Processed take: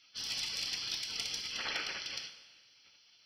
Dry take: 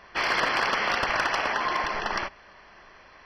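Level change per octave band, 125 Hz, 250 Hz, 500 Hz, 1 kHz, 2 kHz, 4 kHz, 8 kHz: -14.0 dB, -18.0 dB, -22.5 dB, -25.0 dB, -16.5 dB, -2.5 dB, +1.5 dB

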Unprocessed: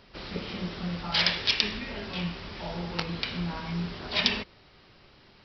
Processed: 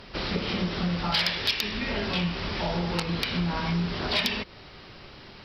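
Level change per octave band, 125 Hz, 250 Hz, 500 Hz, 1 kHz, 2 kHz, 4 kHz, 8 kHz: +5.0 dB, +5.0 dB, +5.5 dB, +5.0 dB, +2.0 dB, +0.5 dB, no reading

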